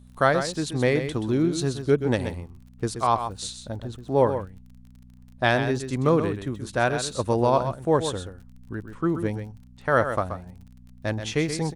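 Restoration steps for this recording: de-click; de-hum 61.9 Hz, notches 4; inverse comb 129 ms -9 dB

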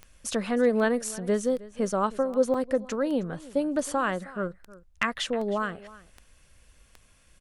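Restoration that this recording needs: clip repair -12 dBFS; de-click; interpolate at 2.54 s, 3.3 ms; inverse comb 314 ms -19.5 dB

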